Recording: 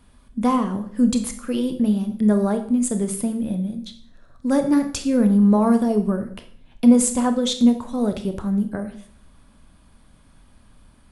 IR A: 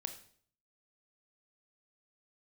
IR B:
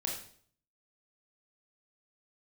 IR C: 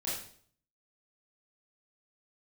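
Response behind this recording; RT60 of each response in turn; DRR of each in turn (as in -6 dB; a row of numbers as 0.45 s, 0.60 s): A; 0.55 s, 0.55 s, 0.55 s; 7.0 dB, -1.0 dB, -8.5 dB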